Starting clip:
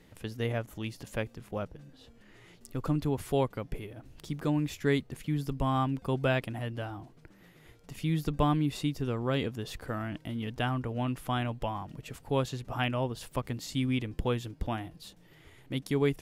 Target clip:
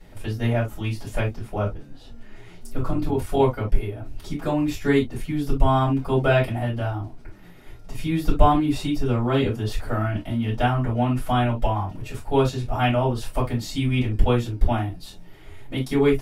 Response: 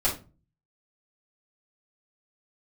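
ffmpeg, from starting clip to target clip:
-filter_complex "[0:a]asettb=1/sr,asplit=3[link_01][link_02][link_03];[link_01]atrim=end=2.774[link_04];[link_02]atrim=start=2.77:end=3.4,asetpts=PTS-STARTPTS,afade=type=in:duration=0.004:curve=qsin,afade=type=out:start_time=0.626:duration=0.004:curve=qsin,tremolo=f=40:d=0.621[link_05];[link_03]atrim=start=3.396[link_06];[link_04][link_05]acrossfade=duration=0.004:curve1=hsin:curve2=qsin[link_07];[link_07][link_06]acrossfade=duration=0.004:curve1=qsin:curve2=hsin[link_08];[1:a]atrim=start_sample=2205,afade=type=out:start_time=0.13:duration=0.01,atrim=end_sample=6174,asetrate=48510,aresample=44100[link_09];[link_08][link_09]afir=irnorm=-1:irlink=0,volume=-1.5dB"

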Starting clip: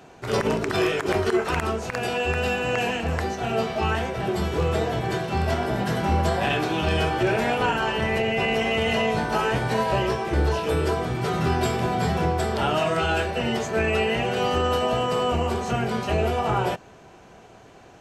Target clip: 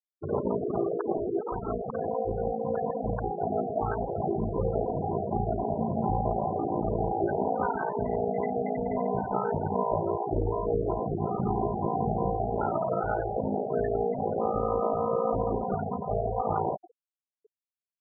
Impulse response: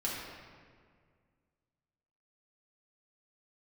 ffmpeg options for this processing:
-filter_complex "[0:a]aeval=exprs='val(0)*sin(2*PI*28*n/s)':channel_layout=same,lowshelf=frequency=230:gain=-5,acompressor=threshold=-39dB:ratio=2,asettb=1/sr,asplit=3[link_01][link_02][link_03];[link_01]atrim=end=15.724[link_04];[link_02]atrim=start=15.72:end=16.39,asetpts=PTS-STARTPTS,afade=type=in:duration=0.004:curve=qsin,afade=type=out:start_time=0.666:duration=0.004:curve=qsin,equalizer=frequency=310:width=2.4:gain=-10[link_05];[link_03]atrim=start=16.386[link_06];[link_04][link_05]acrossfade=duration=0.004:curve1=hsin:curve2=qsin[link_07];[link_07][link_06]acrossfade=duration=0.004:curve1=qsin:curve2=hsin,aecho=1:1:194:0.158,asettb=1/sr,asplit=3[link_08][link_09][link_10];[link_08]atrim=end=1.154[link_11];[link_09]atrim=start=1.15:end=1.71,asetpts=PTS-STARTPTS,afade=type=in:duration=0.004:curve=qsin,afade=type=out:start_time=0.556:duration=0.004:curve=qsin,asoftclip=type=hard:threshold=-32dB[link_12];[link_10]atrim=start=1.706[link_13];[link_11][link_12]acrossfade=duration=0.004:curve1=hsin:curve2=qsin[link_14];[link_14][link_13]acrossfade=duration=0.004:curve1=qsin:curve2=hsin,lowpass=1100,asplit=2[link_15][link_16];[1:a]atrim=start_sample=2205[link_17];[link_16][link_17]afir=irnorm=-1:irlink=0,volume=-16dB[link_18];[link_15][link_18]amix=inputs=2:normalize=0,dynaudnorm=framelen=110:gausssize=3:maxgain=6dB,bandreject=frequency=60:width_type=h:width=6,bandreject=frequency=120:width_type=h:width=6,bandreject=frequency=180:width_type=h:width=6,bandreject=frequency=240:width_type=h:width=6,bandreject=frequency=300:width_type=h:width=6,bandreject=frequency=360:width_type=h:width=6,bandreject=frequency=420:width_type=h:width=6,bandreject=frequency=480:width_type=h:width=6,bandreject=frequency=540:width_type=h:width=6,bandreject=frequency=600:width_type=h:width=6,afftfilt=real='re*gte(hypot(re,im),0.0562)':imag='im*gte(hypot(re,im),0.0562)':win_size=1024:overlap=0.75,volume=2.5dB"

